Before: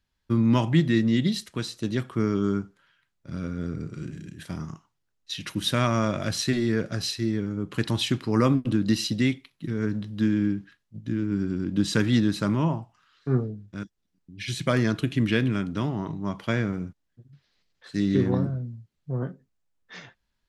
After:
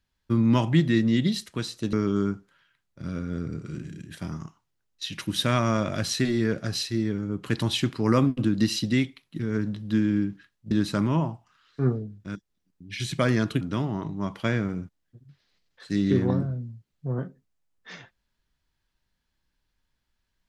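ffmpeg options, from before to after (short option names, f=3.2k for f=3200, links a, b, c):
-filter_complex "[0:a]asplit=4[a][b][c][d];[a]atrim=end=1.932[e];[b]atrim=start=2.208:end=10.992[f];[c]atrim=start=12.188:end=15.092[g];[d]atrim=start=15.648[h];[e][f]acrossfade=d=0.004:c1=hsin:c2=hsin[i];[i][g]acrossfade=d=0.004:c1=hsin:c2=hsin[j];[j][h]acrossfade=d=0.004:c1=hsin:c2=hsin"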